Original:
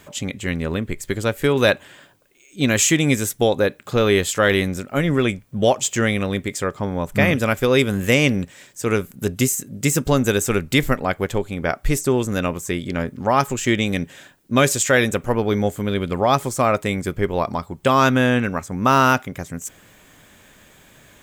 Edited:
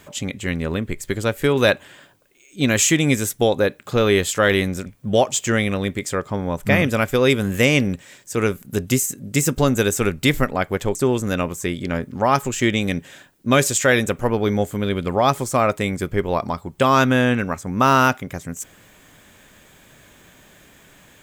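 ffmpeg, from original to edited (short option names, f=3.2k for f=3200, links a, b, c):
-filter_complex "[0:a]asplit=3[a][b][c];[a]atrim=end=4.862[d];[b]atrim=start=5.348:end=11.442[e];[c]atrim=start=11.998[f];[d][e]acrossfade=d=0.004:c1=hsin:c2=hsin[g];[g][f]acrossfade=d=0.004:c1=hsin:c2=hsin"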